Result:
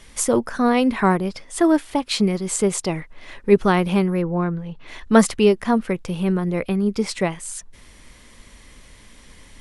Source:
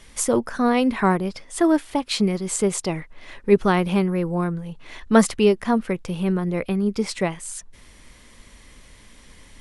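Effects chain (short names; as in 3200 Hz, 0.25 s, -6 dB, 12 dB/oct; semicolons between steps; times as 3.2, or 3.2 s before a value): 4.21–4.86 LPF 2600 Hz -> 5100 Hz 12 dB/oct; gain +1.5 dB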